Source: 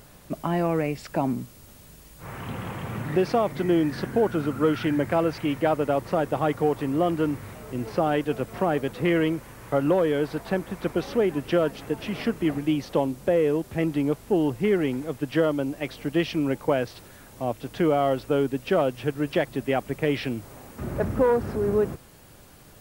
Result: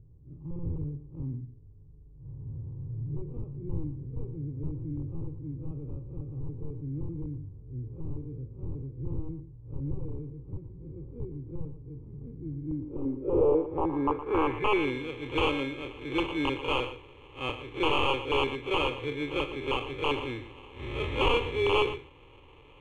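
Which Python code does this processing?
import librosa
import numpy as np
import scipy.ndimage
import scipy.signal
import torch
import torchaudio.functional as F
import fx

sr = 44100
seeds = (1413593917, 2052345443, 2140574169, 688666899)

y = fx.spec_blur(x, sr, span_ms=83.0)
y = fx.sample_hold(y, sr, seeds[0], rate_hz=1900.0, jitter_pct=0)
y = (np.mod(10.0 ** (17.5 / 20.0) * y + 1.0, 2.0) - 1.0) / 10.0 ** (17.5 / 20.0)
y = fx.fixed_phaser(y, sr, hz=1000.0, stages=8)
y = y + 10.0 ** (-12.5 / 20.0) * np.pad(y, (int(116 * sr / 1000.0), 0))[:len(y)]
y = fx.filter_sweep_lowpass(y, sr, from_hz=150.0, to_hz=3200.0, start_s=12.55, end_s=14.96, q=2.0)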